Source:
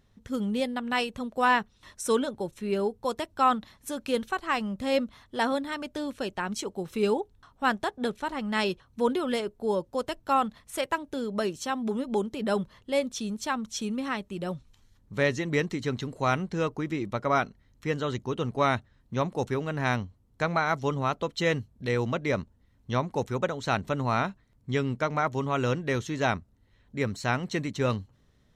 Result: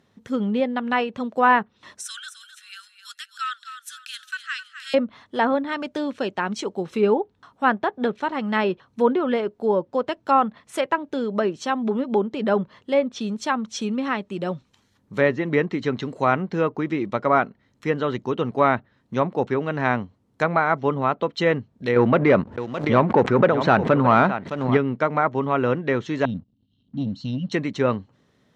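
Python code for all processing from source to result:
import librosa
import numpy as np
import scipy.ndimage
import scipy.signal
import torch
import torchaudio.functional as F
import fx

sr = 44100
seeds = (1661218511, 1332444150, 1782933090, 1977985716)

y = fx.chain(x, sr, fx.steep_highpass(hz=1400.0, slope=72),
    fx.peak_eq(hz=2200.0, db=-10.5, octaves=0.43),
    fx.echo_feedback(ms=260, feedback_pct=30, wet_db=-10.5), at=(2.02, 4.94))
y = fx.chain(y, sr, fx.echo_single(ms=614, db=-14.5),
    fx.leveller(passes=2),
    fx.pre_swell(db_per_s=77.0), at=(21.96, 24.77))
y = fx.chain(y, sr, fx.brickwall_bandstop(low_hz=300.0, high_hz=2700.0),
    fx.leveller(passes=1),
    fx.air_absorb(metres=260.0), at=(26.25, 27.52))
y = scipy.signal.sosfilt(scipy.signal.butter(2, 170.0, 'highpass', fs=sr, output='sos'), y)
y = fx.high_shelf(y, sr, hz=4600.0, db=-6.5)
y = fx.env_lowpass_down(y, sr, base_hz=2100.0, full_db=-24.5)
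y = F.gain(torch.from_numpy(y), 7.0).numpy()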